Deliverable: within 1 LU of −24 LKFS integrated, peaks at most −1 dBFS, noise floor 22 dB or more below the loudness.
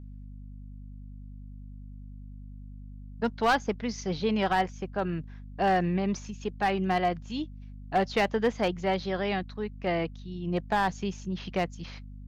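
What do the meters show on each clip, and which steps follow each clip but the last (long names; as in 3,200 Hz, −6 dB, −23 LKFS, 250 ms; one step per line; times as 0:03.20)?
share of clipped samples 0.4%; peaks flattened at −18.0 dBFS; mains hum 50 Hz; hum harmonics up to 250 Hz; level of the hum −41 dBFS; integrated loudness −29.5 LKFS; sample peak −18.0 dBFS; target loudness −24.0 LKFS
→ clipped peaks rebuilt −18 dBFS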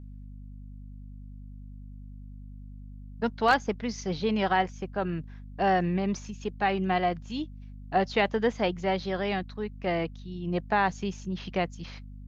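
share of clipped samples 0.0%; mains hum 50 Hz; hum harmonics up to 250 Hz; level of the hum −41 dBFS
→ mains-hum notches 50/100/150/200/250 Hz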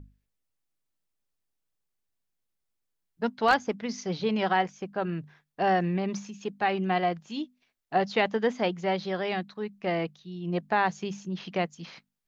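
mains hum none found; integrated loudness −29.0 LKFS; sample peak −8.5 dBFS; target loudness −24.0 LKFS
→ level +5 dB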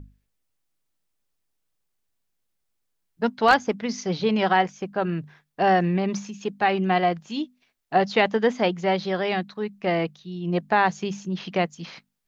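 integrated loudness −24.0 LKFS; sample peak −3.5 dBFS; background noise floor −76 dBFS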